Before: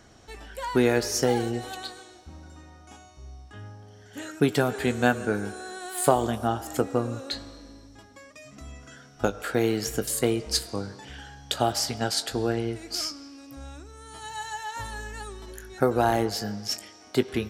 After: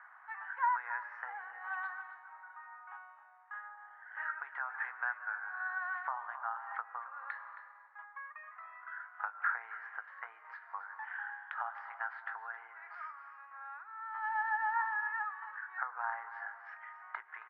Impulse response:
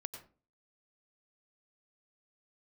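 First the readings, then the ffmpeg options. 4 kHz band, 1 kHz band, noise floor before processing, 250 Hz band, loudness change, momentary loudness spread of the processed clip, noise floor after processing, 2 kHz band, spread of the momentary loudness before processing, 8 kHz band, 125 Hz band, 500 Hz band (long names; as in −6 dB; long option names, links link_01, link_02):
below −35 dB, −5.5 dB, −51 dBFS, below −40 dB, −12.5 dB, 16 LU, −58 dBFS, −1.5 dB, 21 LU, below −40 dB, below −40 dB, −33.5 dB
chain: -filter_complex "[0:a]acompressor=threshold=-32dB:ratio=6,asuperpass=centerf=1300:order=8:qfactor=1.3,asplit=2[link_01][link_02];[link_02]aecho=0:1:270:0.2[link_03];[link_01][link_03]amix=inputs=2:normalize=0,volume=7dB"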